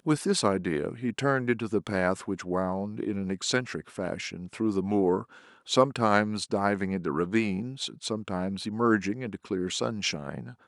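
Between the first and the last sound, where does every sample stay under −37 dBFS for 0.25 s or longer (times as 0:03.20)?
0:05.22–0:05.68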